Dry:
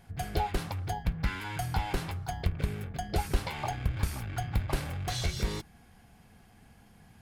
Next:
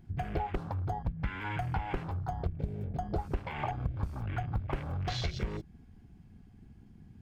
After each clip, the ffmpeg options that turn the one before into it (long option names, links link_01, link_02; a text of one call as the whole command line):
ffmpeg -i in.wav -af "acompressor=threshold=-36dB:ratio=3,afwtdn=0.00447,equalizer=frequency=11000:width_type=o:width=0.55:gain=-10.5,volume=4.5dB" out.wav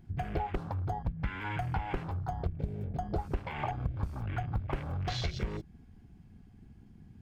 ffmpeg -i in.wav -af anull out.wav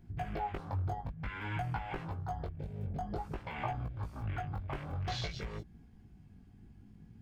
ffmpeg -i in.wav -filter_complex "[0:a]acrossover=split=570[link_01][link_02];[link_01]alimiter=level_in=5.5dB:limit=-24dB:level=0:latency=1:release=179,volume=-5.5dB[link_03];[link_03][link_02]amix=inputs=2:normalize=0,flanger=delay=17.5:depth=3.3:speed=0.54,volume=1dB" out.wav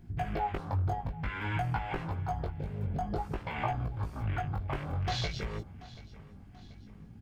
ffmpeg -i in.wav -af "aecho=1:1:734|1468|2202|2936:0.106|0.0519|0.0254|0.0125,volume=4.5dB" out.wav